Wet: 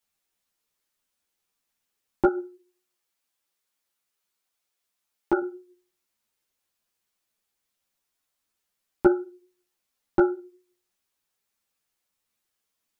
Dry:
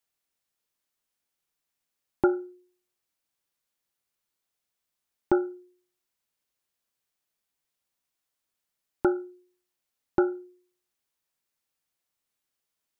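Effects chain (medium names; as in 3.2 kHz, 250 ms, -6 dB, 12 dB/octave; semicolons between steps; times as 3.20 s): 2.27–5.42 s: bass shelf 240 Hz -8.5 dB; three-phase chorus; trim +6.5 dB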